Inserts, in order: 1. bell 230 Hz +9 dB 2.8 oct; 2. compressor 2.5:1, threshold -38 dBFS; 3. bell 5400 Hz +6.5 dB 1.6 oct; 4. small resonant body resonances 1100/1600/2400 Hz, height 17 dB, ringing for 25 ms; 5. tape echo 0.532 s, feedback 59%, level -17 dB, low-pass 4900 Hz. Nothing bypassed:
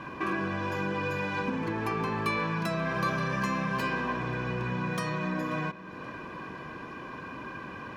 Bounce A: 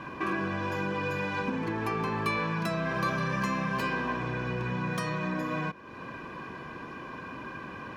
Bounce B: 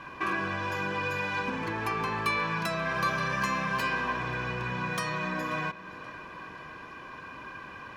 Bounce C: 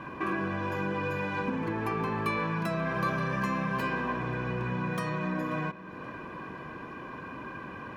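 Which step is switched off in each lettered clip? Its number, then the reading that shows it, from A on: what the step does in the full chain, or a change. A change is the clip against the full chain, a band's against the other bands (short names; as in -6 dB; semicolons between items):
5, echo-to-direct -27.0 dB to none; 1, 250 Hz band -6.5 dB; 3, 8 kHz band -5.0 dB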